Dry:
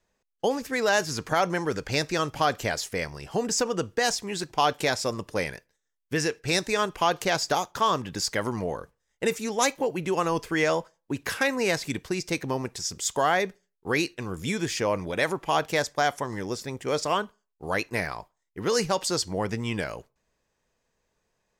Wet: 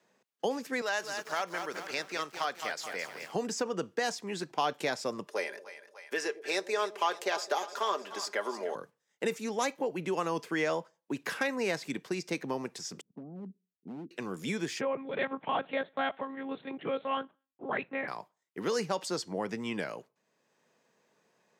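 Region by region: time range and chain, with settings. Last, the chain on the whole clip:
0.81–3.32 s: high-pass 1.1 kHz 6 dB/octave + bit-crushed delay 213 ms, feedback 55%, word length 7-bit, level -7 dB
5.26–8.75 s: high-pass 350 Hz 24 dB/octave + comb 5 ms, depth 47% + two-band feedback delay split 660 Hz, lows 106 ms, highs 298 ms, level -15 dB
13.01–14.11 s: four-pole ladder low-pass 270 Hz, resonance 50% + hard clipper -37 dBFS
14.81–18.08 s: de-esser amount 35% + monotone LPC vocoder at 8 kHz 270 Hz + distance through air 96 m
whole clip: high-pass 160 Hz 24 dB/octave; treble shelf 4.7 kHz -6.5 dB; three bands compressed up and down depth 40%; trim -5.5 dB

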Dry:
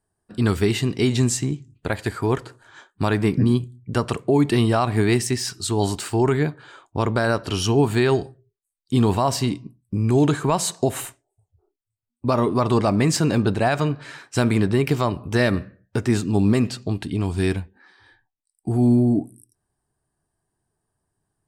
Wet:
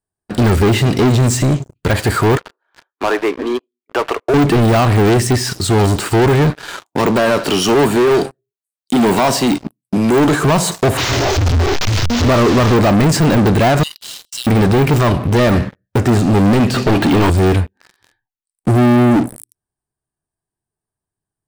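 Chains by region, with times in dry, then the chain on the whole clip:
2.37–4.34 s: Bessel high-pass 600 Hz, order 8 + tape spacing loss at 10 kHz 39 dB
6.50–10.43 s: Bessel high-pass 230 Hz, order 6 + treble shelf 4.1 kHz +3.5 dB
10.97–12.76 s: one-bit delta coder 32 kbps, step -26.5 dBFS + peaking EQ 84 Hz +13.5 dB 0.31 oct
13.83–14.47 s: brick-wall FIR high-pass 2.7 kHz + treble shelf 7.9 kHz +3 dB + decay stretcher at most 110 dB/s
16.74–17.30 s: high-pass 56 Hz 6 dB/octave + overdrive pedal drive 26 dB, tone 1.4 kHz, clips at -13 dBFS
whole clip: de-esser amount 100%; treble shelf 11 kHz +5 dB; waveshaping leveller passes 5

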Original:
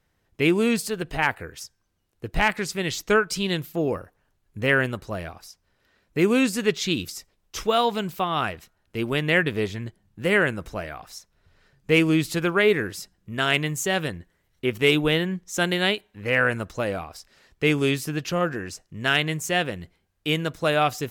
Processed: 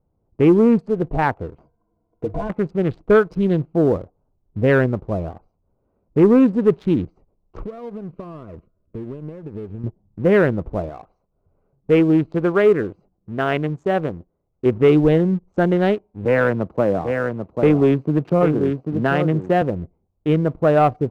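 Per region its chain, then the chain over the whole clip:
1.58–2.50 s: rippled EQ curve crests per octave 1.8, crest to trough 17 dB + compression 3:1, threshold -30 dBFS + overdrive pedal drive 17 dB, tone 1.2 kHz, clips at -19 dBFS
7.63–9.84 s: Butterworth band-stop 820 Hz, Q 2.4 + compression 12:1, threshold -35 dBFS
10.89–14.66 s: bass shelf 260 Hz -7.5 dB + band-stop 920 Hz, Q 16
16.25–19.62 s: high-pass 120 Hz + delay 791 ms -7.5 dB + three bands compressed up and down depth 40%
whole clip: local Wiener filter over 25 samples; low-pass 1 kHz 12 dB/octave; waveshaping leveller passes 1; trim +5.5 dB

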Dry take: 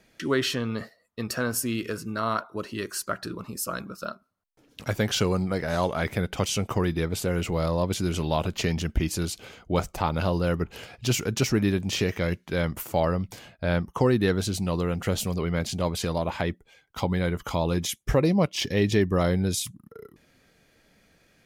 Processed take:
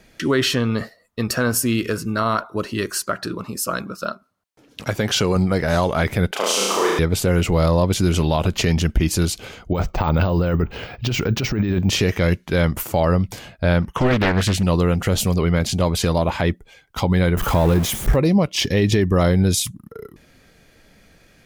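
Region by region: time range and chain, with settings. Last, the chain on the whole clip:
2.98–5.36 s: high-pass 140 Hz 6 dB/octave + treble shelf 11 kHz -5 dB
6.31–6.99 s: Bessel high-pass 460 Hz, order 4 + flutter echo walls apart 6.1 m, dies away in 1.2 s
9.73–11.90 s: compressor with a negative ratio -27 dBFS + distance through air 160 m + careless resampling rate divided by 2×, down none, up hold
13.82–14.63 s: de-esser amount 55% + high-order bell 2.2 kHz +10 dB 1.3 oct + loudspeaker Doppler distortion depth 0.89 ms
17.37–18.16 s: jump at every zero crossing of -27.5 dBFS + peaking EQ 5.2 kHz -8 dB 2.2 oct
whole clip: bass shelf 64 Hz +8.5 dB; peak limiter -16.5 dBFS; trim +8 dB

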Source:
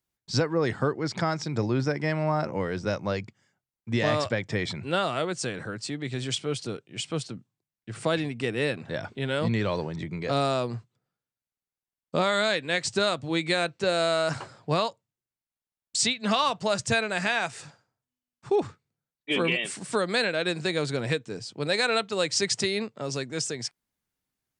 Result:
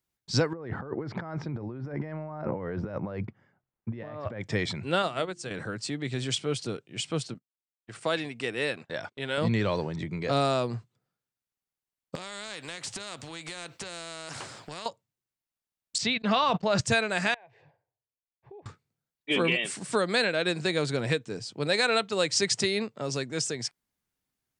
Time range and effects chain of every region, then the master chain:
0.53–4.41 s: compressor with a negative ratio -35 dBFS + low-pass 1.5 kHz
5.02–5.51 s: hum notches 50/100/150/200/250/300/350 Hz + upward expansion 2.5:1, over -36 dBFS
7.34–9.38 s: gate -42 dBFS, range -26 dB + bass shelf 290 Hz -11.5 dB
12.15–14.86 s: compression 12:1, threshold -33 dBFS + spectrum-flattening compressor 2:1
15.98–16.81 s: gate -37 dBFS, range -44 dB + distance through air 150 m + decay stretcher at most 26 dB/s
17.34–18.66 s: compression 12:1, threshold -35 dBFS + four-pole ladder low-pass 2.2 kHz, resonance 30% + static phaser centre 550 Hz, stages 4
whole clip: none

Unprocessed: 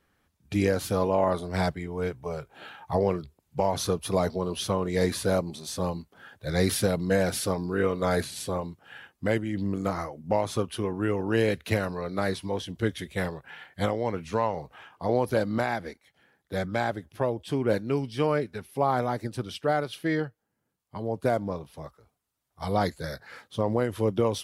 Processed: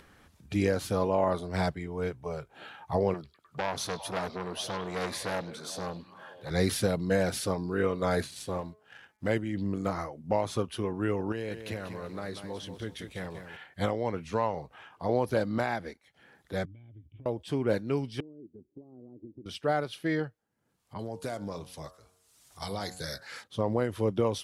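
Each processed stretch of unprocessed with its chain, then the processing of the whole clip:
3.14–6.51 s: high-pass 140 Hz 6 dB/octave + repeats whose band climbs or falls 101 ms, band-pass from 3.8 kHz, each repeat -0.7 oct, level -6.5 dB + transformer saturation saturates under 1.7 kHz
8.26–9.29 s: companding laws mixed up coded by A + de-hum 213.9 Hz, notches 11
11.32–13.57 s: compression 2:1, threshold -36 dBFS + bit-crushed delay 191 ms, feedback 35%, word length 9-bit, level -8 dB
16.65–17.26 s: resonant low shelf 150 Hz +9 dB, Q 3 + compression 20:1, threshold -32 dBFS + cascade formant filter i
18.20–19.46 s: bass shelf 180 Hz -7.5 dB + compression 12:1, threshold -31 dBFS + four-pole ladder low-pass 360 Hz, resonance 60%
20.99–23.44 s: peaking EQ 7.6 kHz +14 dB 2.6 oct + compression 4:1, threshold -29 dBFS + de-hum 91.6 Hz, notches 19
whole clip: Bessel low-pass 11 kHz, order 2; upward compressor, threshold -42 dBFS; trim -2.5 dB

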